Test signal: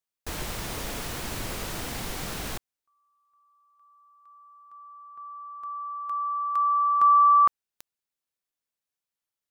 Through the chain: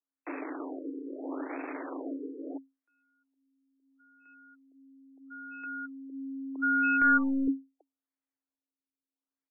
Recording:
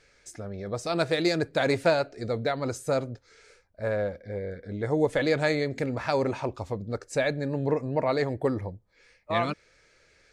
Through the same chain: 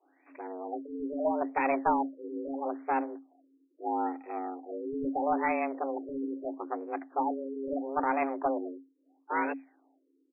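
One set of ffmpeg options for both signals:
ffmpeg -i in.wav -af "aeval=exprs='if(lt(val(0),0),0.251*val(0),val(0))':channel_layout=same,afreqshift=270,aresample=11025,aeval=exprs='clip(val(0),-1,0.0891)':channel_layout=same,aresample=44100,afftfilt=real='re*lt(b*sr/1024,490*pow(2700/490,0.5+0.5*sin(2*PI*0.76*pts/sr)))':imag='im*lt(b*sr/1024,490*pow(2700/490,0.5+0.5*sin(2*PI*0.76*pts/sr)))':win_size=1024:overlap=0.75" out.wav

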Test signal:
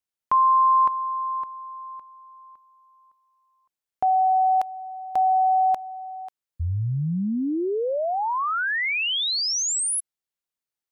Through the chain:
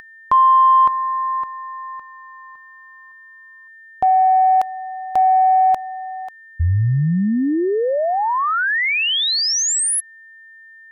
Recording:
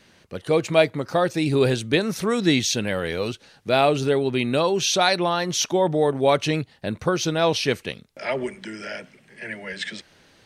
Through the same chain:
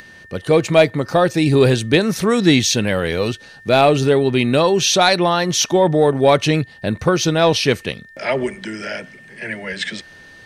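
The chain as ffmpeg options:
ffmpeg -i in.wav -af "asoftclip=type=tanh:threshold=-6dB,aeval=exprs='val(0)+0.00398*sin(2*PI*1800*n/s)':channel_layout=same,acompressor=mode=upward:threshold=-50dB:ratio=1.5:attack=58:release=40:knee=2.83:detection=peak,lowshelf=frequency=130:gain=4.5,volume=6dB" out.wav

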